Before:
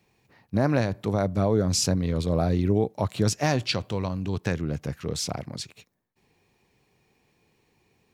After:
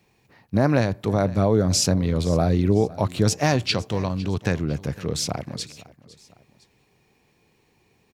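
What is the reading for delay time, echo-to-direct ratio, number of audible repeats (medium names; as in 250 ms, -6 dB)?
507 ms, -18.5 dB, 2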